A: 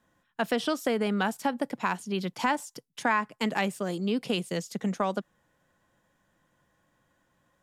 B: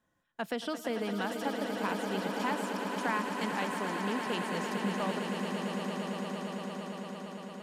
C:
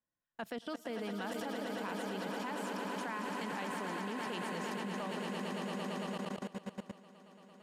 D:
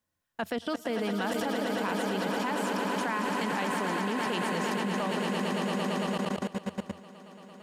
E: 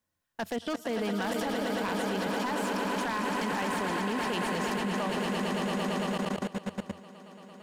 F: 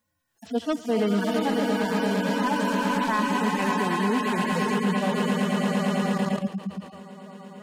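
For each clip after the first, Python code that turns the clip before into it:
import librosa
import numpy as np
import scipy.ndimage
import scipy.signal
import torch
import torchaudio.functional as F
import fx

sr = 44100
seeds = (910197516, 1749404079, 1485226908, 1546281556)

y1 = fx.echo_swell(x, sr, ms=113, loudest=8, wet_db=-9)
y1 = y1 * librosa.db_to_amplitude(-7.5)
y2 = fx.level_steps(y1, sr, step_db=19)
y2 = y2 * librosa.db_to_amplitude(-1.0)
y3 = fx.peak_eq(y2, sr, hz=85.0, db=11.0, octaves=0.29)
y3 = y3 * librosa.db_to_amplitude(9.0)
y4 = 10.0 ** (-23.5 / 20.0) * (np.abs((y3 / 10.0 ** (-23.5 / 20.0) + 3.0) % 4.0 - 2.0) - 1.0)
y5 = fx.hpss_only(y4, sr, part='harmonic')
y5 = y5 * librosa.db_to_amplitude(8.5)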